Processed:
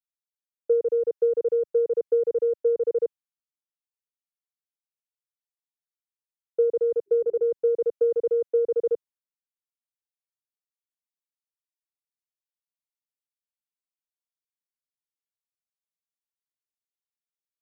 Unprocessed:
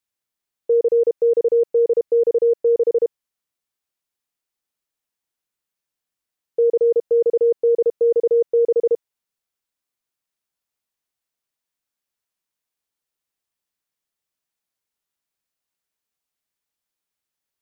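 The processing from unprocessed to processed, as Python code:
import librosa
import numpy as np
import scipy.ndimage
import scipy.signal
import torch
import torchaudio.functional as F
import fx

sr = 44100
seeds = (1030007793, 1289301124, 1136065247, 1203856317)

y = fx.hum_notches(x, sr, base_hz=50, count=8, at=(7.06, 7.47), fade=0.02)
y = fx.transient(y, sr, attack_db=5, sustain_db=-2)
y = fx.band_widen(y, sr, depth_pct=70)
y = y * librosa.db_to_amplitude(-8.0)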